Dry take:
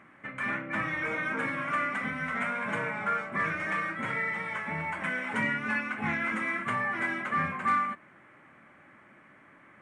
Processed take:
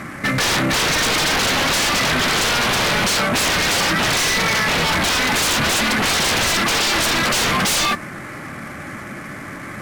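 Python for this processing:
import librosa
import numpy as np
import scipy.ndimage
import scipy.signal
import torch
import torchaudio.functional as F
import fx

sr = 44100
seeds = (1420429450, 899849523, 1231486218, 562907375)

y = fx.cvsd(x, sr, bps=64000)
y = fx.low_shelf(y, sr, hz=160.0, db=11.5)
y = fx.notch(y, sr, hz=960.0, q=12.0)
y = fx.fold_sine(y, sr, drive_db=19, ceiling_db=-15.0)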